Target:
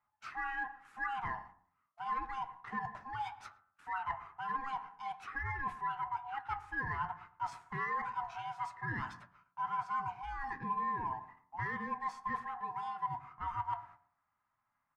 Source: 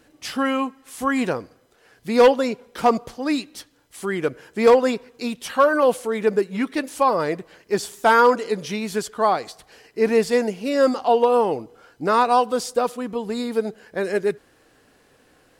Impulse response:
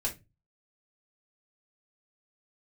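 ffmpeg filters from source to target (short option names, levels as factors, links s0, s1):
-filter_complex "[0:a]afftfilt=real='real(if(lt(b,1008),b+24*(1-2*mod(floor(b/24),2)),b),0)':imag='imag(if(lt(b,1008),b+24*(1-2*mod(floor(b/24),2)),b),0)':win_size=2048:overlap=0.75,asetrate=45938,aresample=44100,alimiter=limit=0.224:level=0:latency=1:release=35,agate=range=0.0794:threshold=0.00501:ratio=16:detection=peak,areverse,acompressor=threshold=0.0224:ratio=4,areverse,flanger=delay=9.2:depth=3:regen=-62:speed=1.1:shape=sinusoidal,equalizer=f=125:t=o:w=1:g=11,equalizer=f=500:t=o:w=1:g=-4,equalizer=f=2000:t=o:w=1:g=4,equalizer=f=4000:t=o:w=1:g=-6,adynamicsmooth=sensitivity=6.5:basefreq=3900,equalizer=f=1300:w=1.2:g=15,bandreject=f=89.08:t=h:w=4,bandreject=f=178.16:t=h:w=4,bandreject=f=267.24:t=h:w=4,bandreject=f=356.32:t=h:w=4,bandreject=f=445.4:t=h:w=4,bandreject=f=534.48:t=h:w=4,bandreject=f=623.56:t=h:w=4,bandreject=f=712.64:t=h:w=4,bandreject=f=801.72:t=h:w=4,bandreject=f=890.8:t=h:w=4,bandreject=f=979.88:t=h:w=4,bandreject=f=1068.96:t=h:w=4,bandreject=f=1158.04:t=h:w=4,bandreject=f=1247.12:t=h:w=4,bandreject=f=1336.2:t=h:w=4,bandreject=f=1425.28:t=h:w=4,bandreject=f=1514.36:t=h:w=4,bandreject=f=1603.44:t=h:w=4,bandreject=f=1692.52:t=h:w=4,bandreject=f=1781.6:t=h:w=4,asplit=2[s0][s1];[s1]adelay=112,lowpass=f=1000:p=1,volume=0.188,asplit=2[s2][s3];[s3]adelay=112,lowpass=f=1000:p=1,volume=0.28,asplit=2[s4][s5];[s5]adelay=112,lowpass=f=1000:p=1,volume=0.28[s6];[s2][s4][s6]amix=inputs=3:normalize=0[s7];[s0][s7]amix=inputs=2:normalize=0,volume=0.398"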